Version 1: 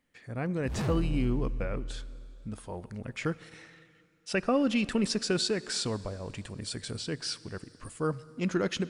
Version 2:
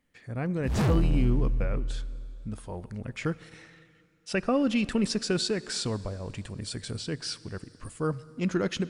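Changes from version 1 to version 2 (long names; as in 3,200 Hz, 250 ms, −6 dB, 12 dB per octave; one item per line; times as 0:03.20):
speech: add low-shelf EQ 170 Hz +5 dB
background +7.0 dB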